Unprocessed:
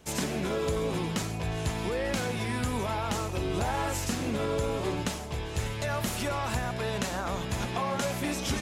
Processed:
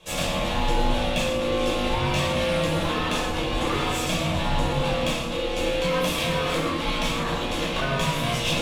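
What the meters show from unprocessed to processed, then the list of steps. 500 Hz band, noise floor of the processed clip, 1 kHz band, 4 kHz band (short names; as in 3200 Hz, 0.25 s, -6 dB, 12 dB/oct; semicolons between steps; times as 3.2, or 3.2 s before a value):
+6.5 dB, -28 dBFS, +6.5 dB, +10.5 dB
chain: bell 3100 Hz +14 dB 0.43 oct; ring modulator 410 Hz; on a send: split-band echo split 1100 Hz, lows 0.18 s, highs 0.115 s, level -12.5 dB; on the sum: one-sided clip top -29.5 dBFS; shoebox room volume 850 m³, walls furnished, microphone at 5.5 m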